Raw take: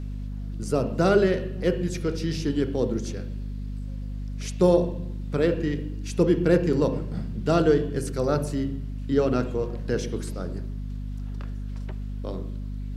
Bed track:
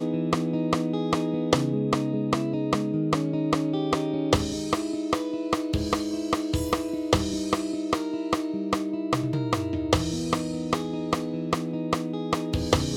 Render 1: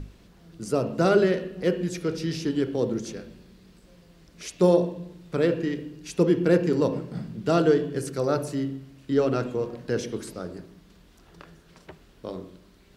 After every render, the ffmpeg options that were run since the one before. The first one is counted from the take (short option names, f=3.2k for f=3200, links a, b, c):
-af "bandreject=f=50:t=h:w=6,bandreject=f=100:t=h:w=6,bandreject=f=150:t=h:w=6,bandreject=f=200:t=h:w=6,bandreject=f=250:t=h:w=6"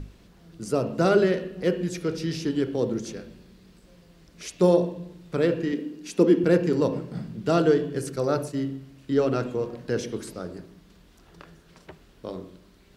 -filter_complex "[0:a]asettb=1/sr,asplit=3[a][b][c];[a]atrim=end=5.724[d];[b]atrim=start=5.72:end=6.44,asetpts=PTS-STARTPTS,afade=t=in:d=0.004:c=qsin,afade=t=out:st=0.716:d=0.004:c=qsin,lowshelf=f=160:t=q:w=3:g=-12[e];[c]atrim=start=6.436[f];[d][e]acrossfade=d=0.004:c1=hsin:c2=qsin[g];[g][f]acrossfade=d=0.004:c1=qsin:c2=hsin,asettb=1/sr,asplit=3[h][i][j];[h]atrim=end=8.164[k];[i]atrim=start=8.16:end=8.63,asetpts=PTS-STARTPTS,afade=t=in:d=0.004:c=qsin,afade=t=out:st=0.466:d=0.004:c=qsin,agate=range=-33dB:threshold=-32dB:ratio=3:release=100:detection=peak[l];[j]atrim=start=8.626[m];[k][l]acrossfade=d=0.004:c1=hsin:c2=qsin[n];[n][m]acrossfade=d=0.004:c1=qsin:c2=hsin"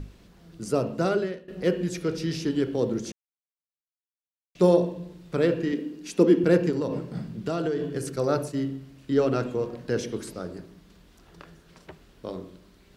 -filter_complex "[0:a]asettb=1/sr,asplit=3[a][b][c];[a]atrim=end=6.704[d];[b]atrim=start=6.7:end=8.16,asetpts=PTS-STARTPTS,afade=t=in:d=0.004:c=qsin,afade=t=out:st=1.456:d=0.004:c=qsin,acompressor=threshold=-23dB:ratio=6:attack=3.2:release=140:knee=1:detection=peak[e];[c]atrim=start=8.156[f];[d][e]acrossfade=d=0.004:c1=hsin:c2=qsin[g];[g][f]acrossfade=d=0.004:c1=qsin:c2=hsin,asplit=4[h][i][j][k];[h]atrim=end=1.48,asetpts=PTS-STARTPTS,afade=t=out:st=0.79:d=0.69:silence=0.0891251[l];[i]atrim=start=1.48:end=3.12,asetpts=PTS-STARTPTS,afade=t=in:d=0.004:c=hsin:silence=0.0891251,afade=t=out:st=1.636:d=0.004:c=hsin[m];[j]atrim=start=3.12:end=4.55,asetpts=PTS-STARTPTS,volume=0[n];[k]atrim=start=4.55,asetpts=PTS-STARTPTS,afade=t=in:d=0.004:c=hsin[o];[l][m][n][o]concat=n=4:v=0:a=1"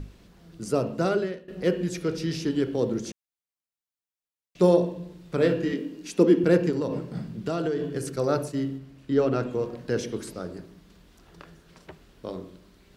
-filter_complex "[0:a]asettb=1/sr,asplit=3[a][b][c];[a]atrim=end=5.384[d];[b]atrim=start=5.38:end=6.07,asetpts=PTS-STARTPTS,afade=t=in:d=0.004:c=qsin,afade=t=out:st=0.686:d=0.004:c=qsin,asplit=2[e][f];[f]adelay=22,volume=-4.5dB[g];[e][g]amix=inputs=2:normalize=0,atrim=end_sample=30429[h];[c]atrim=start=6.066[i];[d][h]acrossfade=d=0.004:c1=hsin:c2=qsin[j];[j][i]acrossfade=d=0.004:c1=qsin:c2=hsin,asettb=1/sr,asplit=3[k][l][m];[k]atrim=end=8.784[n];[l]atrim=start=8.78:end=9.53,asetpts=PTS-STARTPTS,afade=t=in:d=0.004:c=qsin,afade=t=out:st=0.746:d=0.004:c=qsin,highshelf=f=3.6k:g=-5.5[o];[m]atrim=start=9.526[p];[n][o]acrossfade=d=0.004:c1=hsin:c2=qsin[q];[q][p]acrossfade=d=0.004:c1=qsin:c2=hsin"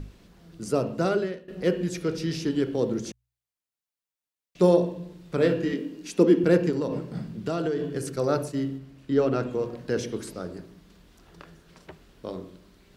-af "bandreject=f=59.64:t=h:w=4,bandreject=f=119.28:t=h:w=4"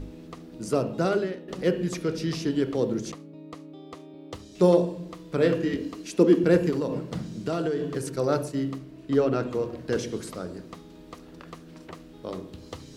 -filter_complex "[1:a]volume=-18dB[a];[0:a][a]amix=inputs=2:normalize=0"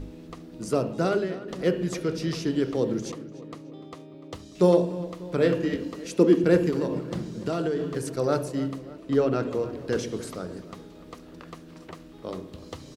-filter_complex "[0:a]asplit=2[a][b];[b]adelay=296,lowpass=f=4k:p=1,volume=-16dB,asplit=2[c][d];[d]adelay=296,lowpass=f=4k:p=1,volume=0.55,asplit=2[e][f];[f]adelay=296,lowpass=f=4k:p=1,volume=0.55,asplit=2[g][h];[h]adelay=296,lowpass=f=4k:p=1,volume=0.55,asplit=2[i][j];[j]adelay=296,lowpass=f=4k:p=1,volume=0.55[k];[a][c][e][g][i][k]amix=inputs=6:normalize=0"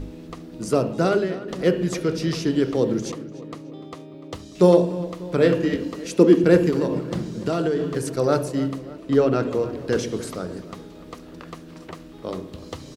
-af "volume=4.5dB"